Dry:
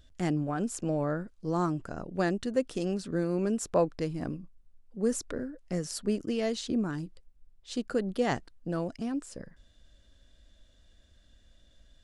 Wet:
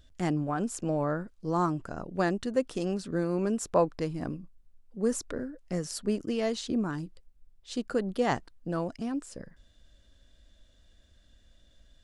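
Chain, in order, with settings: dynamic EQ 1000 Hz, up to +5 dB, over -45 dBFS, Q 1.7

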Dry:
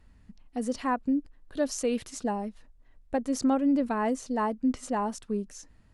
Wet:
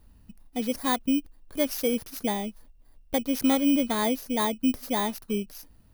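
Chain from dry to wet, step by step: FFT order left unsorted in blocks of 16 samples; gain +2 dB

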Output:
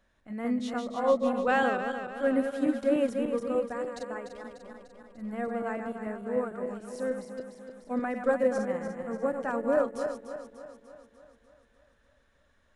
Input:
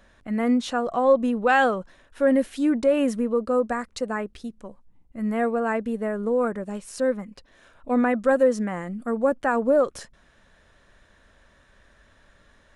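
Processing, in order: regenerating reverse delay 0.148 s, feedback 75%, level -5 dB; upward expander 1.5:1, over -28 dBFS; gain -6 dB

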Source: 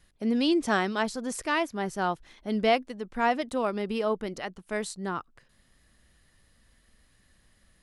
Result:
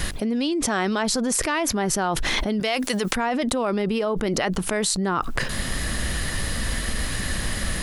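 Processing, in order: 2.6–3.16 tilt +3.5 dB/oct; fast leveller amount 100%; gain -3 dB

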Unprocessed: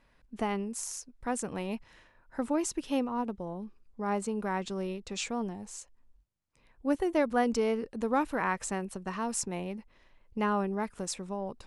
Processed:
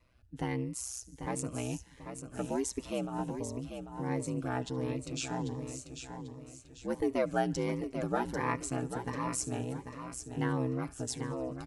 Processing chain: comb 5.4 ms, depth 47%; thinning echo 72 ms, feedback 73%, high-pass 930 Hz, level -22.5 dB; ring modulator 63 Hz; feedback echo 0.792 s, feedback 38%, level -8 dB; cascading phaser rising 1.4 Hz

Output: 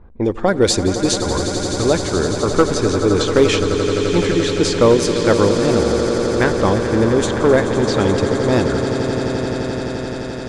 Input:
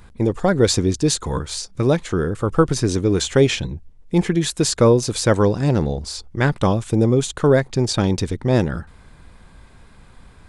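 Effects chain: low-pass opened by the level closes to 490 Hz, open at -11.5 dBFS; on a send: swelling echo 86 ms, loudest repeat 8, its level -12.5 dB; on the sum: hard clip -6 dBFS, distortion -25 dB; bell 140 Hz -11 dB 0.7 oct; mismatched tape noise reduction encoder only; gain +2.5 dB

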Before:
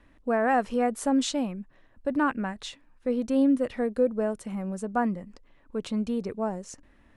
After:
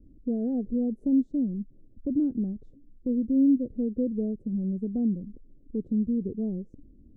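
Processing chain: inverse Chebyshev low-pass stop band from 960 Hz, stop band 50 dB; in parallel at +1 dB: compressor, threshold -36 dBFS, peak gain reduction 15.5 dB

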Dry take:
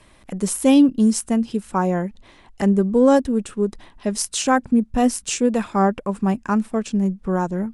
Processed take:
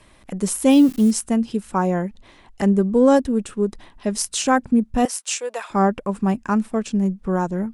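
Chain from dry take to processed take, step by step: 0.7–1.11 switching spikes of -24.5 dBFS; 5.05–5.7 HPF 570 Hz 24 dB/oct

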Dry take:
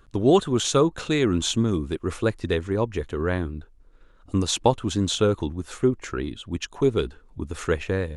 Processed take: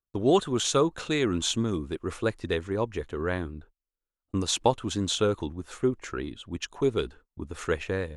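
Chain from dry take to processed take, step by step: gate -43 dBFS, range -34 dB; low shelf 330 Hz -5 dB; mismatched tape noise reduction decoder only; gain -2 dB

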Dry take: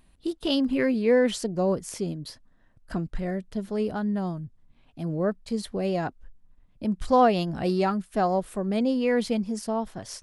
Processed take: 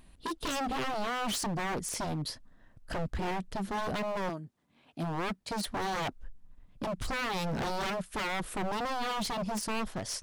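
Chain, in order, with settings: 4.28–5.66 HPF 340 Hz -> 94 Hz 12 dB/oct; limiter -21 dBFS, peak gain reduction 11.5 dB; wavefolder -31 dBFS; gain +3 dB

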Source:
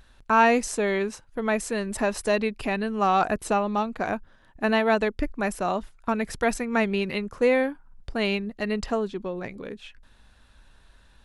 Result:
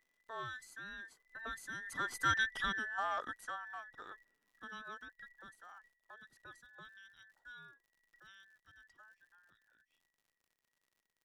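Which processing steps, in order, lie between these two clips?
band inversion scrambler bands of 2000 Hz; Doppler pass-by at 2.46, 6 m/s, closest 1.4 m; crackle 95/s -55 dBFS; gain -7 dB

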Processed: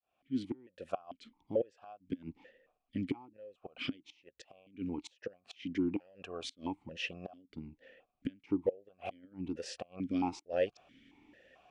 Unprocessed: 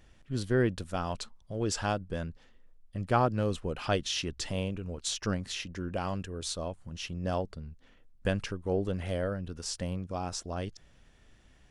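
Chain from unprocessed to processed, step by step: opening faded in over 0.95 s; flipped gate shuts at -23 dBFS, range -30 dB; vowel sequencer 4.5 Hz; gain +15 dB

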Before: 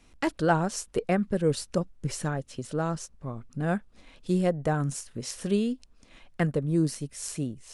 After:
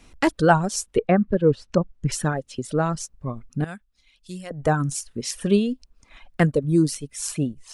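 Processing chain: reverb removal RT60 1.7 s; 0.86–2.12 treble ducked by the level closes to 1600 Hz, closed at -22.5 dBFS; 3.64–4.51 passive tone stack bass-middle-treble 5-5-5; gain +7.5 dB

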